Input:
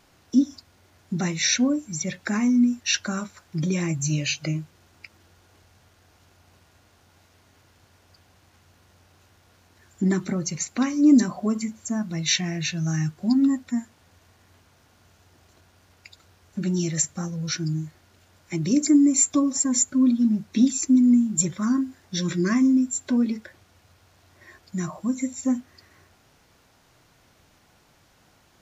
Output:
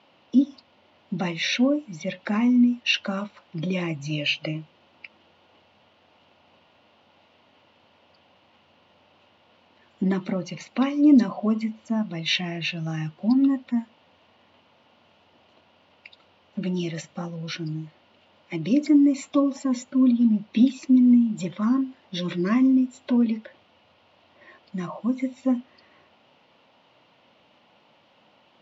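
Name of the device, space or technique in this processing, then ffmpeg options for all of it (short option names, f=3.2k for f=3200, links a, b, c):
kitchen radio: -af "highpass=200,equalizer=f=220:t=q:w=4:g=4,equalizer=f=390:t=q:w=4:g=-3,equalizer=f=560:t=q:w=4:g=7,equalizer=f=920:t=q:w=4:g=5,equalizer=f=1.6k:t=q:w=4:g=-6,equalizer=f=2.9k:t=q:w=4:g=8,lowpass=f=4k:w=0.5412,lowpass=f=4k:w=1.3066"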